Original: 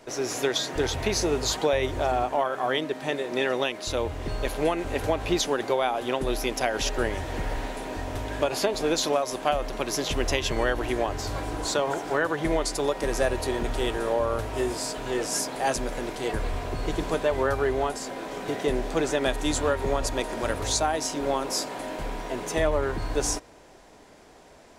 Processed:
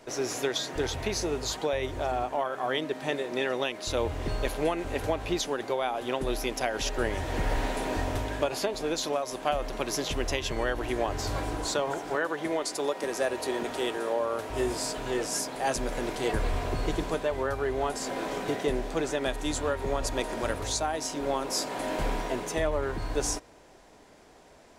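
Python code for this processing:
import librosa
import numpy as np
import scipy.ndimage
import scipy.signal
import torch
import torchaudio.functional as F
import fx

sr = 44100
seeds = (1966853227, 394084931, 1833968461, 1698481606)

y = fx.highpass(x, sr, hz=220.0, slope=12, at=(12.15, 14.5))
y = fx.rider(y, sr, range_db=10, speed_s=0.5)
y = y * 10.0 ** (-3.0 / 20.0)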